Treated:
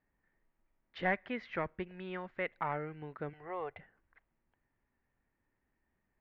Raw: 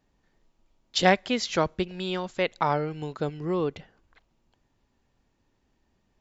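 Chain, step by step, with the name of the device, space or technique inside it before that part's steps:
0:03.33–0:03.79: drawn EQ curve 110 Hz 0 dB, 200 Hz −23 dB, 750 Hz +11 dB, 1,100 Hz +2 dB
overdriven synthesiser ladder filter (soft clipping −14 dBFS, distortion −14 dB; transistor ladder low-pass 2,200 Hz, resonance 55%)
level −1.5 dB

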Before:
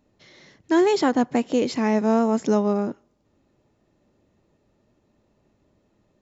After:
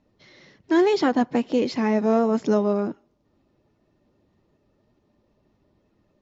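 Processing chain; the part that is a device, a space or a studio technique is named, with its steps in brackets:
clip after many re-uploads (low-pass filter 5,800 Hz 24 dB per octave; spectral magnitudes quantised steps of 15 dB)

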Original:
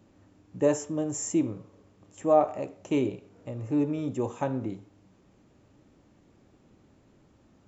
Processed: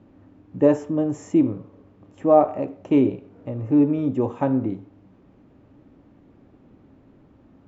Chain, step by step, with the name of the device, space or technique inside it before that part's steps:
phone in a pocket (low-pass filter 4,000 Hz 12 dB per octave; parametric band 270 Hz +6 dB 0.22 octaves; high-shelf EQ 2,300 Hz −9.5 dB)
level +6.5 dB

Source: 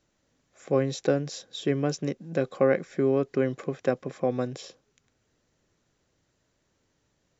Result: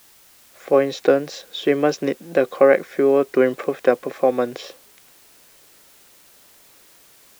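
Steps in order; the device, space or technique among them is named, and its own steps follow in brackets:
dictaphone (band-pass filter 350–3,700 Hz; automatic gain control gain up to 13.5 dB; tape wow and flutter; white noise bed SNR 30 dB)

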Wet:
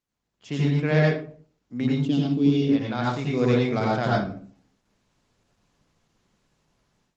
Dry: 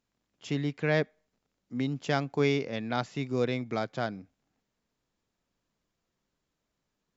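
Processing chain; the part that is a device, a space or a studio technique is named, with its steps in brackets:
0:02.00–0:02.62: drawn EQ curve 120 Hz 0 dB, 200 Hz +4 dB, 280 Hz +14 dB, 480 Hz −9 dB, 810 Hz −15 dB, 2,000 Hz −21 dB, 2,900 Hz +2 dB, 6,000 Hz −7 dB, 9,700 Hz 0 dB
speakerphone in a meeting room (convolution reverb RT60 0.45 s, pre-delay 81 ms, DRR −4.5 dB; automatic gain control gain up to 16.5 dB; level −7.5 dB; Opus 16 kbit/s 48,000 Hz)

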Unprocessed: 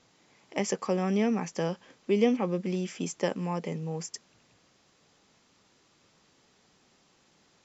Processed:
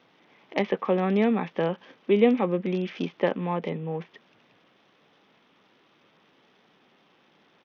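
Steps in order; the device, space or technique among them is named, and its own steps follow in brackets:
Bluetooth headset (high-pass filter 180 Hz 12 dB per octave; downsampling to 8,000 Hz; level +5 dB; SBC 64 kbit/s 48,000 Hz)

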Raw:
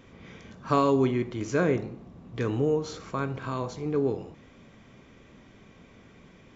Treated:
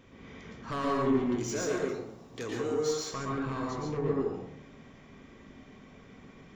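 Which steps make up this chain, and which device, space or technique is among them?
0:01.38–0:03.14: bass and treble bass −11 dB, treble +14 dB
saturation between pre-emphasis and de-emphasis (high-shelf EQ 5,800 Hz +6 dB; soft clipping −26.5 dBFS, distortion −8 dB; high-shelf EQ 5,800 Hz −6 dB)
dense smooth reverb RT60 0.65 s, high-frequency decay 0.5×, pre-delay 105 ms, DRR −2.5 dB
level −4 dB

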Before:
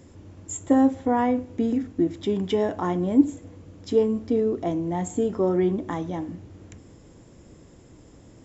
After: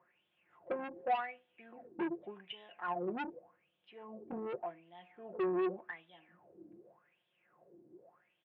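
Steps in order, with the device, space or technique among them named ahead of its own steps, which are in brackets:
low-pass filter 1,700 Hz 6 dB per octave
wah-wah guitar rig (LFO wah 0.86 Hz 300–3,400 Hz, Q 9.1; tube saturation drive 35 dB, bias 0.25; loudspeaker in its box 110–3,800 Hz, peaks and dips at 150 Hz +4 dB, 280 Hz −9 dB, 690 Hz +5 dB, 1,600 Hz +4 dB, 2,600 Hz +8 dB)
0:03.36–0:04.56: parametric band 1,800 Hz −4 dB 1.2 octaves
high-shelf EQ 4,200 Hz −10.5 dB
comb filter 5.6 ms, depth 52%
level +3 dB

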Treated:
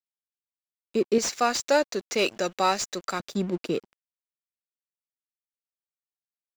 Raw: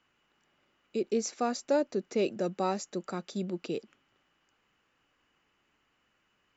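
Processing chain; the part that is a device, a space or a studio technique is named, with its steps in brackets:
0:01.18–0:03.20: tilt shelving filter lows −9.5 dB, about 720 Hz
early transistor amplifier (dead-zone distortion −50.5 dBFS; slew-rate limiting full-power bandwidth 120 Hz)
level +7.5 dB

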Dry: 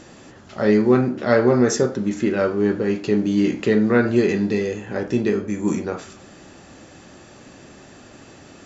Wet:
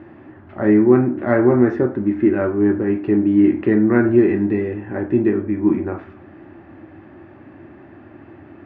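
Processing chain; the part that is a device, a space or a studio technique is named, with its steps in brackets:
bass cabinet (loudspeaker in its box 78–2,000 Hz, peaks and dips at 90 Hz +9 dB, 180 Hz −5 dB, 330 Hz +10 dB, 470 Hz −10 dB, 1,300 Hz −4 dB)
level +1.5 dB

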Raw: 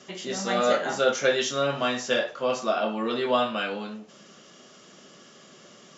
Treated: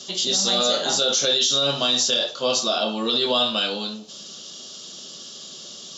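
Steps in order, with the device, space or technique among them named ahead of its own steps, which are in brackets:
over-bright horn tweeter (high shelf with overshoot 2,800 Hz +10.5 dB, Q 3; brickwall limiter −13.5 dBFS, peak gain reduction 10 dB)
level +3 dB

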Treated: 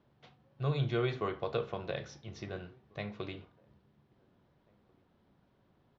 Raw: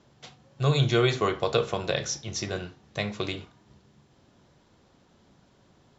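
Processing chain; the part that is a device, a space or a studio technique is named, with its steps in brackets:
shout across a valley (high-frequency loss of the air 260 metres; slap from a distant wall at 290 metres, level −30 dB)
level −8.5 dB

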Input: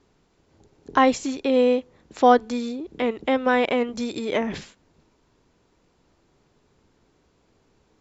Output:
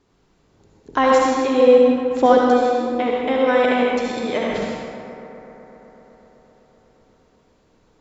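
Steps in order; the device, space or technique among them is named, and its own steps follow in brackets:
0:01.67–0:02.26: low-shelf EQ 490 Hz +7 dB
stairwell (convolution reverb RT60 1.8 s, pre-delay 62 ms, DRR −2.5 dB)
bucket-brigade delay 126 ms, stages 2,048, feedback 84%, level −15 dB
level −1 dB

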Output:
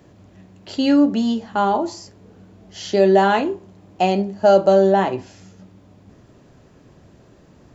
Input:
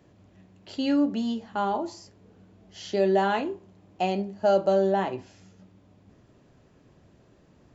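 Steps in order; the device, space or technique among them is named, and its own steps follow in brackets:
exciter from parts (in parallel at −13 dB: high-pass filter 2,400 Hz + soft clipping −31 dBFS, distortion −20 dB + high-pass filter 2,200 Hz)
on the sum: level +8.5 dB

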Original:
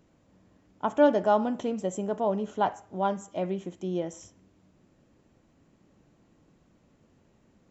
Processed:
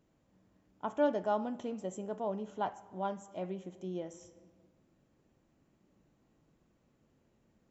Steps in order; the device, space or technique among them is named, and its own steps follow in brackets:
compressed reverb return (on a send at −6.5 dB: convolution reverb RT60 1.3 s, pre-delay 9 ms + downward compressor 4 to 1, threshold −38 dBFS, peak gain reduction 17.5 dB)
on the sum: level −9 dB

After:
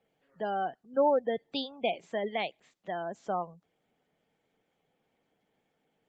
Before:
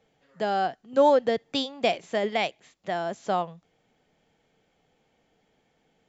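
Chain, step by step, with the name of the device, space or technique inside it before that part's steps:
noise-suppressed video call (high-pass filter 120 Hz 12 dB per octave; gate on every frequency bin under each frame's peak −25 dB strong; level −6 dB; Opus 32 kbit/s 48,000 Hz)

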